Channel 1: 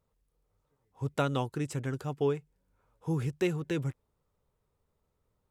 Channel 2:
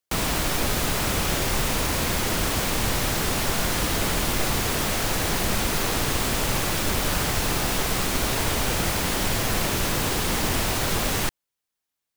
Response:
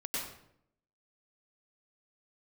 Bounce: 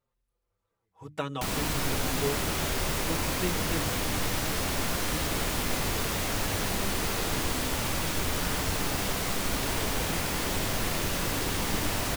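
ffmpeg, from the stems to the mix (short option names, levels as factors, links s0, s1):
-filter_complex "[0:a]equalizer=f=1900:w=0.5:g=4.5,bandreject=f=50:t=h:w=6,bandreject=f=100:t=h:w=6,bandreject=f=150:t=h:w=6,bandreject=f=200:t=h:w=6,bandreject=f=250:t=h:w=6,bandreject=f=300:t=h:w=6,asplit=2[s0][s1];[s1]adelay=5.2,afreqshift=-0.43[s2];[s0][s2]amix=inputs=2:normalize=1,volume=0.841[s3];[1:a]flanger=delay=10:depth=2.8:regen=74:speed=0.38:shape=sinusoidal,adelay=1300,volume=0.596,asplit=2[s4][s5];[s5]volume=0.562[s6];[2:a]atrim=start_sample=2205[s7];[s6][s7]afir=irnorm=-1:irlink=0[s8];[s3][s4][s8]amix=inputs=3:normalize=0"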